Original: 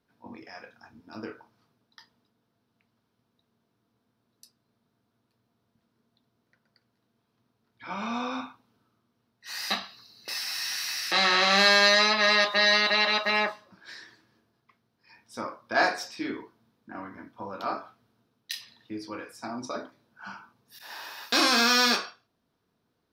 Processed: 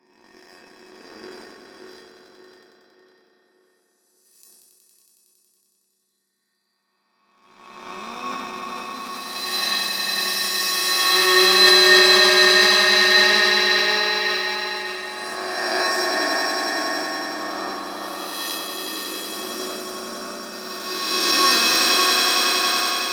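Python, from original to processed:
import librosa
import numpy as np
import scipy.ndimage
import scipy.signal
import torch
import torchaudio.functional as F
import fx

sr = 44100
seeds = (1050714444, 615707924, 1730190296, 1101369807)

p1 = fx.spec_swells(x, sr, rise_s=2.18)
p2 = scipy.signal.sosfilt(scipy.signal.butter(4, 180.0, 'highpass', fs=sr, output='sos'), p1)
p3 = fx.peak_eq(p2, sr, hz=10000.0, db=10.5, octaves=1.5)
p4 = fx.hum_notches(p3, sr, base_hz=60, count=4)
p5 = p4 + fx.echo_swell(p4, sr, ms=92, loudest=5, wet_db=-6.5, dry=0)
p6 = fx.leveller(p5, sr, passes=2)
p7 = fx.comb_fb(p6, sr, f0_hz=370.0, decay_s=0.25, harmonics='odd', damping=0.0, mix_pct=90)
p8 = np.sign(p7) * np.maximum(np.abs(p7) - 10.0 ** (-38.0 / 20.0), 0.0)
p9 = p7 + (p8 * 10.0 ** (-5.0 / 20.0))
p10 = fx.echo_tape(p9, sr, ms=582, feedback_pct=49, wet_db=-5, lp_hz=2000.0, drive_db=8.0, wow_cents=6)
p11 = fx.sustainer(p10, sr, db_per_s=25.0)
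y = p11 * 10.0 ** (2.0 / 20.0)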